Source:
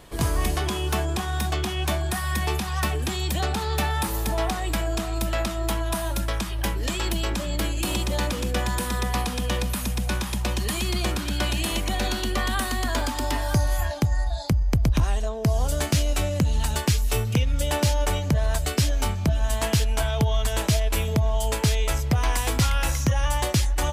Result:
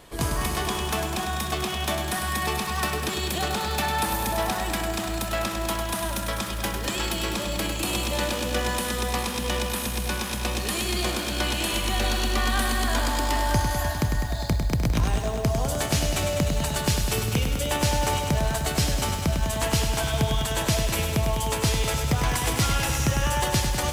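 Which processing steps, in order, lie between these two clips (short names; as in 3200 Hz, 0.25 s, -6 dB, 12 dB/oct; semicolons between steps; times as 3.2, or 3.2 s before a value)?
low shelf 210 Hz -4.5 dB; on a send at -19 dB: reverb RT60 0.35 s, pre-delay 43 ms; on the sum: lo-fi delay 0.101 s, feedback 80%, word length 8-bit, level -6 dB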